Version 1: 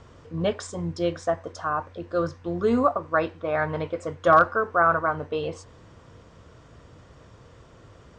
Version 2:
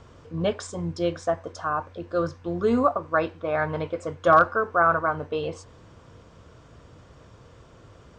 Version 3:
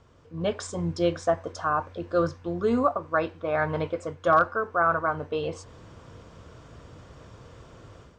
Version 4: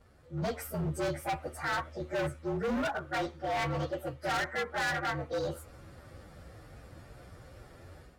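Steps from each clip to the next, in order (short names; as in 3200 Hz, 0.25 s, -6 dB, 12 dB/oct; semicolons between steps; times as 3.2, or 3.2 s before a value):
notch 1900 Hz, Q 18
AGC gain up to 11 dB; gain -8.5 dB
inharmonic rescaling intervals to 115%; overloaded stage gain 29 dB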